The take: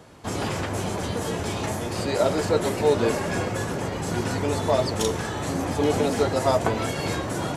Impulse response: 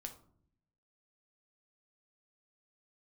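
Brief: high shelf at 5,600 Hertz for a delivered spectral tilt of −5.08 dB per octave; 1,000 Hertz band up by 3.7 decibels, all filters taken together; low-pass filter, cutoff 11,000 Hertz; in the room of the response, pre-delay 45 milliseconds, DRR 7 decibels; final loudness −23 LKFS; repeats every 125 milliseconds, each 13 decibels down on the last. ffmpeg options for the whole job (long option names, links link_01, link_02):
-filter_complex "[0:a]lowpass=11000,equalizer=frequency=1000:width_type=o:gain=5,highshelf=frequency=5600:gain=-7,aecho=1:1:125|250|375:0.224|0.0493|0.0108,asplit=2[link_01][link_02];[1:a]atrim=start_sample=2205,adelay=45[link_03];[link_02][link_03]afir=irnorm=-1:irlink=0,volume=-3dB[link_04];[link_01][link_04]amix=inputs=2:normalize=0"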